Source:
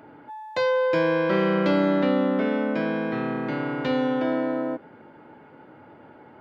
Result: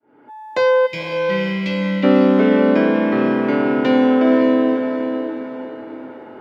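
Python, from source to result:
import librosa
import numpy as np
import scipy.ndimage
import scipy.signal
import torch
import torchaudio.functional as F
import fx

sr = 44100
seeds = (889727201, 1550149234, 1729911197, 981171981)

y = fx.fade_in_head(x, sr, length_s=0.67)
y = fx.graphic_eq_31(y, sr, hz=(160, 250, 400, 4000), db=(-8, 4, 7, -5))
y = fx.spec_box(y, sr, start_s=0.86, length_s=1.18, low_hz=200.0, high_hz=1900.0, gain_db=-20)
y = scipy.signal.sosfilt(scipy.signal.butter(2, 120.0, 'highpass', fs=sr, output='sos'), y)
y = fx.echo_diffused(y, sr, ms=522, feedback_pct=41, wet_db=-6)
y = y * 10.0 ** (7.0 / 20.0)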